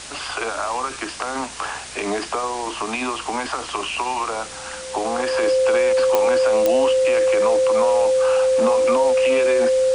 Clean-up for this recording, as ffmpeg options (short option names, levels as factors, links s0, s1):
-af "adeclick=t=4,bandreject=f=62.7:t=h:w=4,bandreject=f=125.4:t=h:w=4,bandreject=f=188.1:t=h:w=4,bandreject=f=250.8:t=h:w=4,bandreject=f=313.5:t=h:w=4,bandreject=f=376.2:t=h:w=4,bandreject=f=520:w=30,afftdn=nr=30:nf=-33"